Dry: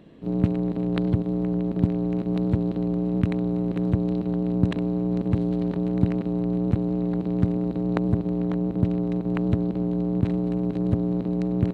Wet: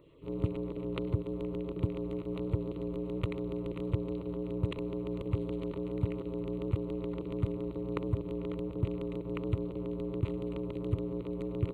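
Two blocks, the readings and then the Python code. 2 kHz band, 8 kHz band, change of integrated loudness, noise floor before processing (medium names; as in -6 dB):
-8.0 dB, no reading, -11.0 dB, -32 dBFS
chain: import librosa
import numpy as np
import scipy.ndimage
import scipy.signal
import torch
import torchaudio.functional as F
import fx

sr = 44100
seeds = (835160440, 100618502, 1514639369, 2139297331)

y = fx.filter_lfo_notch(x, sr, shape='saw_down', hz=7.1, low_hz=220.0, high_hz=3500.0, q=1.6)
y = fx.fixed_phaser(y, sr, hz=1100.0, stages=8)
y = F.gain(torch.from_numpy(y), -4.0).numpy()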